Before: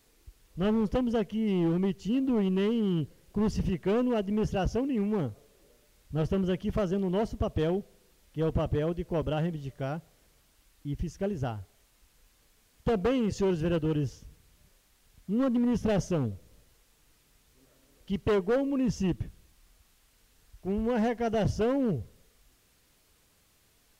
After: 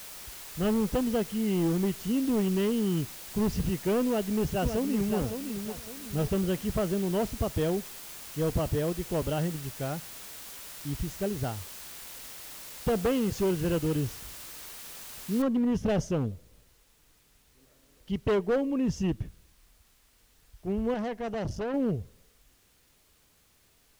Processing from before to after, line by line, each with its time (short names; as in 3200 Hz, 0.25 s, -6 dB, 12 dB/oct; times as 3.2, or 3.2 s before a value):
4.06–5.16 echo throw 0.56 s, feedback 35%, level -7.5 dB
15.42 noise floor step -44 dB -70 dB
20.94–21.74 tube stage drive 29 dB, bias 0.6